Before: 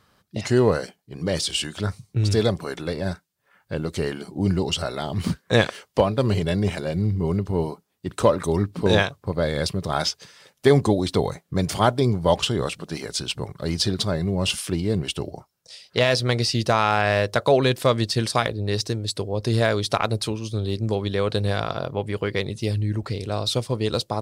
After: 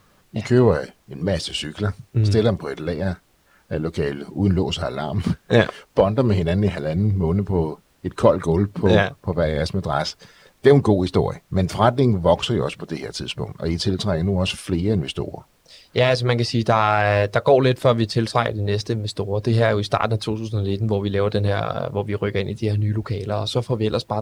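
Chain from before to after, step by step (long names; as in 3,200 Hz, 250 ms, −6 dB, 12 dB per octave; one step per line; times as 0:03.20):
spectral magnitudes quantised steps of 15 dB
high-shelf EQ 4,000 Hz −11 dB
background noise pink −64 dBFS
level +3.5 dB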